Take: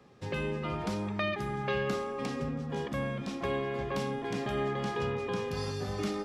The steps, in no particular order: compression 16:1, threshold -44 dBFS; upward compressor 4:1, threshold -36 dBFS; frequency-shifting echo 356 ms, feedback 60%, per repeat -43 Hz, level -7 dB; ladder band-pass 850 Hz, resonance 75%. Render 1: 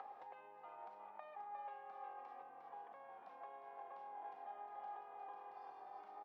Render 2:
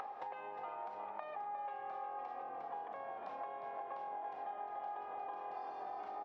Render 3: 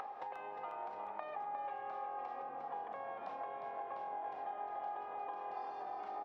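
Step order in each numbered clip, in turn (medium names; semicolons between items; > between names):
frequency-shifting echo > compression > upward compressor > ladder band-pass; compression > ladder band-pass > frequency-shifting echo > upward compressor; compression > ladder band-pass > upward compressor > frequency-shifting echo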